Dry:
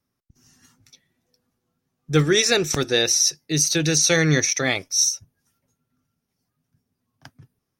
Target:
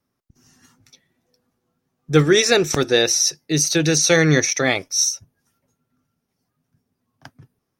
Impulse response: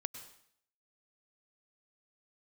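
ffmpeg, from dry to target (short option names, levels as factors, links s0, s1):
-af "equalizer=f=600:w=0.33:g=5"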